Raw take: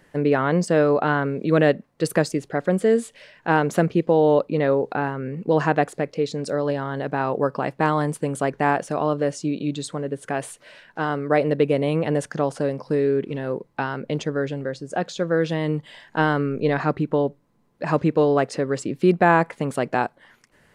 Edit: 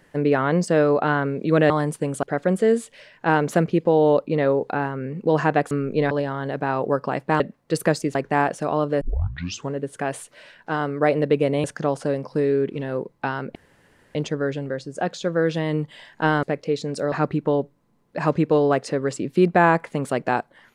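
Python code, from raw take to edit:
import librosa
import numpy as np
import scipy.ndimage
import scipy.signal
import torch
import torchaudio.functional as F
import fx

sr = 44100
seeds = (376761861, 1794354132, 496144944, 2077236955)

y = fx.edit(x, sr, fx.swap(start_s=1.7, length_s=0.75, other_s=7.91, other_length_s=0.53),
    fx.swap(start_s=5.93, length_s=0.69, other_s=16.38, other_length_s=0.4),
    fx.tape_start(start_s=9.3, length_s=0.72),
    fx.cut(start_s=11.93, length_s=0.26),
    fx.insert_room_tone(at_s=14.1, length_s=0.6), tone=tone)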